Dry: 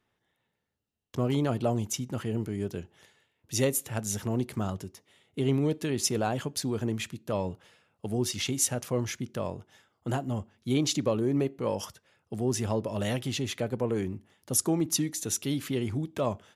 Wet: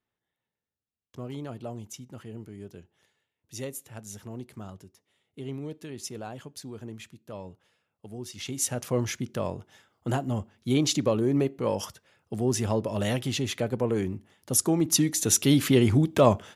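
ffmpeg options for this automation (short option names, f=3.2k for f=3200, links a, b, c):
-af "volume=10dB,afade=t=in:st=8.32:d=0.63:silence=0.237137,afade=t=in:st=14.76:d=0.83:silence=0.421697"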